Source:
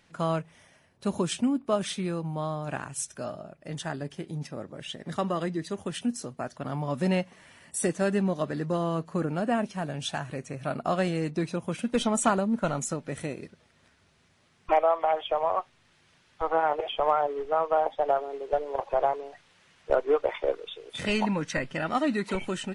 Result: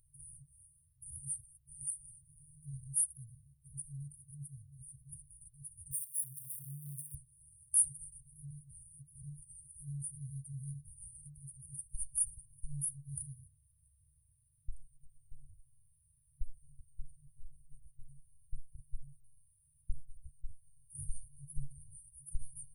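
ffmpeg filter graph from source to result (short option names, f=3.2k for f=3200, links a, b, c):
-filter_complex "[0:a]asettb=1/sr,asplit=3[a][b][c];[a]atrim=end=5.914[d];[b]atrim=start=5.91:end=7.15,asetpts=PTS-STARTPTS,afade=t=in:d=0.004:c=qsin,afade=t=out:st=1.236:d=0.004:c=qsin,aeval=exprs='val(0)+0.5*0.0141*sgn(val(0))':c=same,highpass=f=130:w=0.5412,highpass=f=130:w=1.3066,lowshelf=f=350:g=-7[e];[c]atrim=start=7.146[f];[d][e]acrossfade=d=0.004:c1=hsin:c2=qsin[g];[g][f]acrossfade=d=0.004:c1=qsin:c2=hsin,equalizer=f=110:t=o:w=1.1:g=-12.5,afftfilt=real='re*(1-between(b*sr/4096,150,8700))':imag='im*(1-between(b*sr/4096,150,8700))':win_size=4096:overlap=0.75,volume=7.5dB"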